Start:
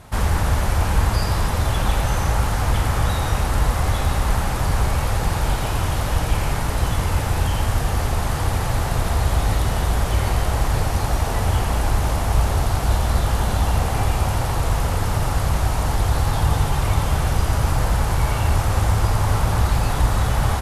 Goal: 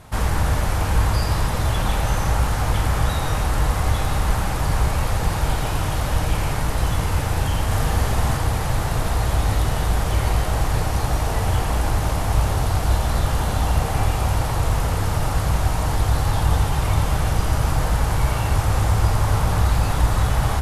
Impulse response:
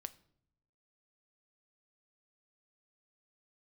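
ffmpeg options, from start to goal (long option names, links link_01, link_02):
-filter_complex "[0:a]asettb=1/sr,asplit=3[link_01][link_02][link_03];[link_01]atrim=end=7.664[link_04];[link_02]atrim=start=7.66:end=8.37,asetpts=PTS-STARTPTS,afade=type=in:duration=0.004:curve=qsin,afade=type=out:start_time=0.706:duration=0.004:curve=qsin,asplit=2[link_05][link_06];[link_06]adelay=47,volume=-3dB[link_07];[link_05][link_07]amix=inputs=2:normalize=0,atrim=end_sample=31311[link_08];[link_03]atrim=start=8.366[link_09];[link_04][link_08]acrossfade=duration=0.004:curve1=hsin:curve2=qsin[link_10];[link_10][link_09]acrossfade=duration=0.004:curve1=qsin:curve2=hsin[link_11];[1:a]atrim=start_sample=2205,asetrate=40131,aresample=44100[link_12];[link_11][link_12]afir=irnorm=-1:irlink=0,volume=3dB"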